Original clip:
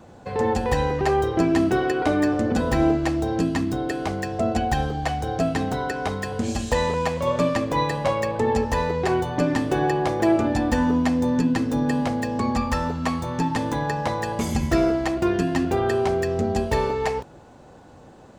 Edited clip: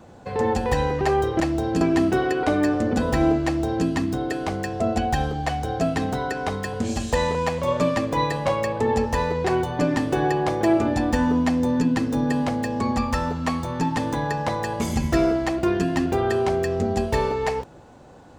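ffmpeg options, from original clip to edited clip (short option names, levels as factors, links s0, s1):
-filter_complex "[0:a]asplit=3[s0][s1][s2];[s0]atrim=end=1.402[s3];[s1]atrim=start=3.038:end=3.452[s4];[s2]atrim=start=1.398[s5];[s3][s4]acrossfade=d=0.004:c1=hsin:c2=hsin[s6];[s6][s5]acrossfade=d=0.004:c1=hsin:c2=hsin"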